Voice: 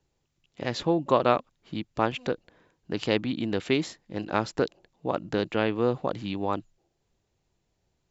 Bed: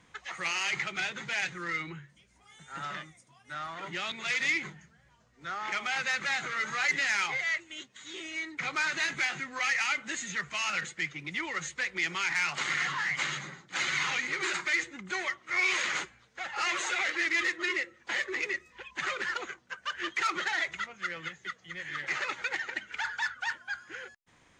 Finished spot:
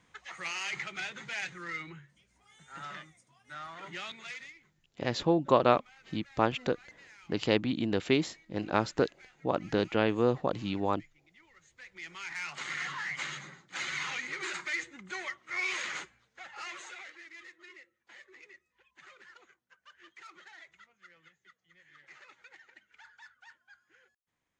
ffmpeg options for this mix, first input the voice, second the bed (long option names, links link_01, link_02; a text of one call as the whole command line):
ffmpeg -i stem1.wav -i stem2.wav -filter_complex "[0:a]adelay=4400,volume=-1.5dB[link_01];[1:a]volume=16.5dB,afade=type=out:start_time=3.99:duration=0.54:silence=0.0794328,afade=type=in:start_time=11.64:duration=1.23:silence=0.0841395,afade=type=out:start_time=15.82:duration=1.41:silence=0.149624[link_02];[link_01][link_02]amix=inputs=2:normalize=0" out.wav